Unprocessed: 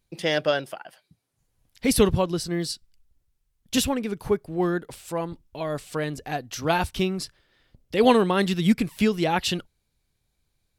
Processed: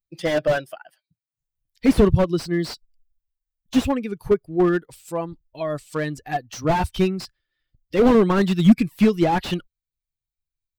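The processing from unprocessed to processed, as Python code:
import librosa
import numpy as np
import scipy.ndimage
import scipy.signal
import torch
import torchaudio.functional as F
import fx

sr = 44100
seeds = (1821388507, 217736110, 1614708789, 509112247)

y = fx.bin_expand(x, sr, power=1.5)
y = fx.slew_limit(y, sr, full_power_hz=40.0)
y = y * librosa.db_to_amplitude(8.5)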